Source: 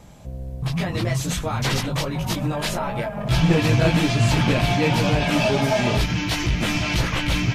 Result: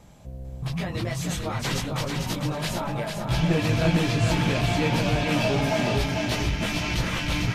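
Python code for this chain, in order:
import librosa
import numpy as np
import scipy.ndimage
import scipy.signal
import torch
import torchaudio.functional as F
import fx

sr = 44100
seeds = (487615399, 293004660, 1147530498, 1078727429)

y = fx.echo_feedback(x, sr, ms=447, feedback_pct=32, wet_db=-5)
y = y * librosa.db_to_amplitude(-5.0)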